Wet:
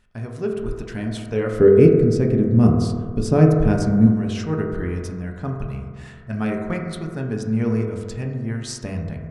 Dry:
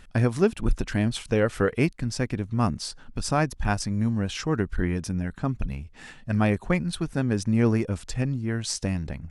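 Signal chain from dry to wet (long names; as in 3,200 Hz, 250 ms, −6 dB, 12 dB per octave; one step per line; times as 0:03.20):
automatic gain control gain up to 11.5 dB
0:01.52–0:04.07: low shelf with overshoot 620 Hz +11 dB, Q 1.5
convolution reverb RT60 1.8 s, pre-delay 4 ms, DRR −0.5 dB
level −12.5 dB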